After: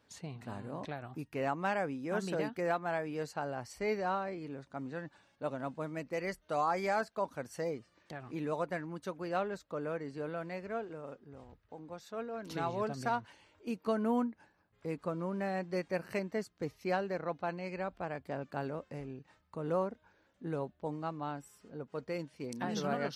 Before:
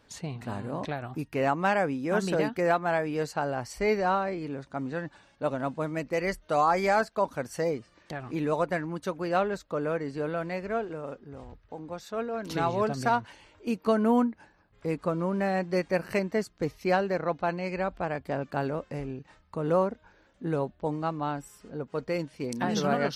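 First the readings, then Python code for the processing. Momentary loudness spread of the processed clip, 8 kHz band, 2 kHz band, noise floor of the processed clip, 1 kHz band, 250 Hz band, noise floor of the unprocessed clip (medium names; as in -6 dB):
12 LU, -8.0 dB, -8.0 dB, -72 dBFS, -8.0 dB, -8.0 dB, -63 dBFS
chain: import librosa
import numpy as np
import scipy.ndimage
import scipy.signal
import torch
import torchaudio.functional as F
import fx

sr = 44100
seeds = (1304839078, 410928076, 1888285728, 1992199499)

y = scipy.signal.sosfilt(scipy.signal.butter(2, 65.0, 'highpass', fs=sr, output='sos'), x)
y = y * librosa.db_to_amplitude(-8.0)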